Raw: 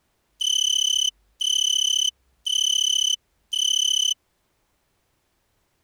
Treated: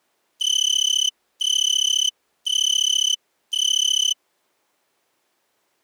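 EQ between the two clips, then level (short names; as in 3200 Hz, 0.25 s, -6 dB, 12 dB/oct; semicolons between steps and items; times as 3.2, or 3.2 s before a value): HPF 330 Hz 12 dB/oct; +1.5 dB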